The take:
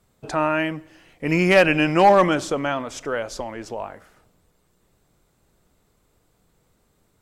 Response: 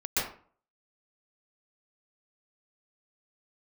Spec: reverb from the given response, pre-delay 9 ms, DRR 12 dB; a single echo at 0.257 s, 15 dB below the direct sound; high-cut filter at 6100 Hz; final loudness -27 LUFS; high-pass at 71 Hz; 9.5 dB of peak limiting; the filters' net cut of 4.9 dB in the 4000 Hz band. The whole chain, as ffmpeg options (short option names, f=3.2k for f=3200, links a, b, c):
-filter_complex "[0:a]highpass=71,lowpass=6.1k,equalizer=f=4k:t=o:g=-7.5,alimiter=limit=-14.5dB:level=0:latency=1,aecho=1:1:257:0.178,asplit=2[a][b];[1:a]atrim=start_sample=2205,adelay=9[c];[b][c]afir=irnorm=-1:irlink=0,volume=-21.5dB[d];[a][d]amix=inputs=2:normalize=0,volume=-0.5dB"